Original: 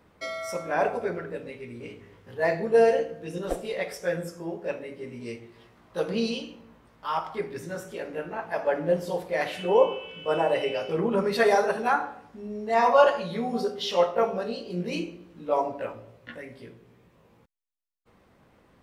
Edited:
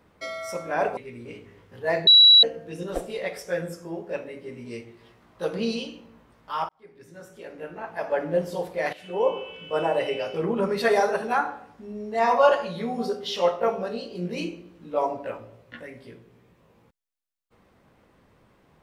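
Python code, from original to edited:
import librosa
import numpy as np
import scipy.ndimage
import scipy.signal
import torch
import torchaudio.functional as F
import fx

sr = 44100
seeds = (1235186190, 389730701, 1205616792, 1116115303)

y = fx.edit(x, sr, fx.cut(start_s=0.97, length_s=0.55),
    fx.bleep(start_s=2.62, length_s=0.36, hz=3910.0, db=-9.5),
    fx.fade_in_span(start_s=7.24, length_s=1.49),
    fx.fade_in_from(start_s=9.48, length_s=0.53, floor_db=-14.0), tone=tone)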